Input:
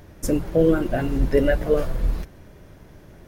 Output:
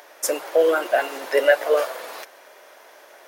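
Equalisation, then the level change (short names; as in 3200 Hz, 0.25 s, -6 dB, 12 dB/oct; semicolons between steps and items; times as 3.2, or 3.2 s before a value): HPF 570 Hz 24 dB/oct; +8.5 dB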